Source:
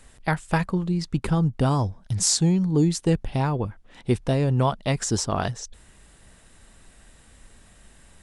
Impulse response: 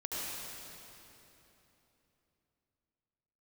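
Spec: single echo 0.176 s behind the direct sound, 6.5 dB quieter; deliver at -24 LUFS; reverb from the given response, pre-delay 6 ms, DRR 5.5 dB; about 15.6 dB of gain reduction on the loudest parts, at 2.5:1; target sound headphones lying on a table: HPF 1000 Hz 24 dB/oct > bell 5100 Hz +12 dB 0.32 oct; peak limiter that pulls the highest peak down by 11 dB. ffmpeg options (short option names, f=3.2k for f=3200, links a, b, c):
-filter_complex "[0:a]acompressor=threshold=-41dB:ratio=2.5,alimiter=level_in=5.5dB:limit=-24dB:level=0:latency=1,volume=-5.5dB,aecho=1:1:176:0.473,asplit=2[a][b];[1:a]atrim=start_sample=2205,adelay=6[c];[b][c]afir=irnorm=-1:irlink=0,volume=-9.5dB[d];[a][d]amix=inputs=2:normalize=0,highpass=f=1k:w=0.5412,highpass=f=1k:w=1.3066,equalizer=f=5.1k:t=o:w=0.32:g=12,volume=18dB"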